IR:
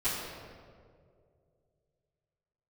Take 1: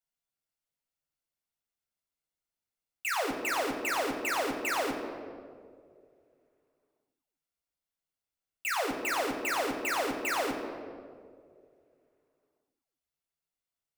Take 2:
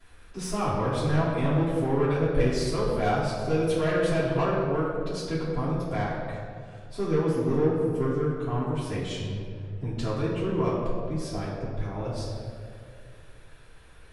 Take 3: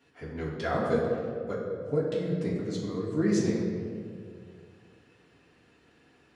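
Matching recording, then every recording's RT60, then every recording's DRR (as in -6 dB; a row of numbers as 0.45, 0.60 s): 2; 2.3, 2.2, 2.2 s; 2.0, -17.0, -7.0 dB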